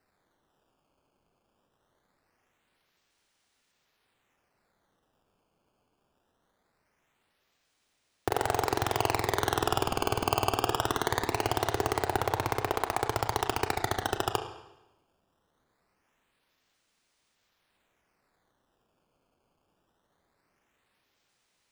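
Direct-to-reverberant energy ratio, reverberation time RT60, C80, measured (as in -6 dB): 6.0 dB, 0.95 s, 11.0 dB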